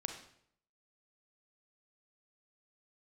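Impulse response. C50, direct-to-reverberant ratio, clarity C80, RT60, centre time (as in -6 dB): 6.5 dB, 4.5 dB, 10.0 dB, 0.65 s, 22 ms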